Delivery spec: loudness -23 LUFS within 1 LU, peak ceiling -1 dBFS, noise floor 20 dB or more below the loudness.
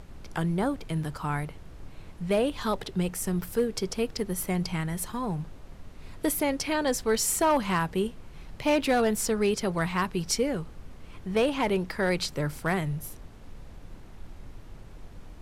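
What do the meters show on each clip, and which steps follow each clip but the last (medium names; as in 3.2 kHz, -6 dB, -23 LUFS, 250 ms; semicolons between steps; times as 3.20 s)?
clipped samples 0.3%; clipping level -17.5 dBFS; noise floor -46 dBFS; noise floor target -49 dBFS; loudness -28.5 LUFS; peak level -17.5 dBFS; loudness target -23.0 LUFS
-> clip repair -17.5 dBFS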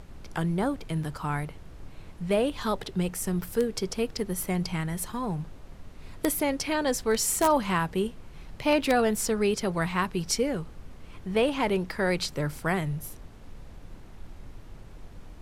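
clipped samples 0.0%; noise floor -46 dBFS; noise floor target -48 dBFS
-> noise print and reduce 6 dB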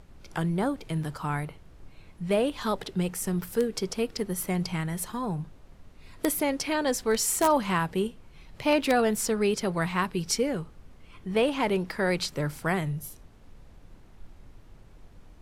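noise floor -52 dBFS; loudness -28.0 LUFS; peak level -8.5 dBFS; loudness target -23.0 LUFS
-> trim +5 dB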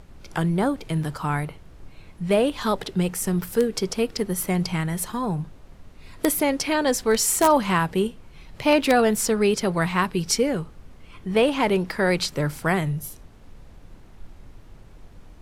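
loudness -23.0 LUFS; peak level -3.5 dBFS; noise floor -47 dBFS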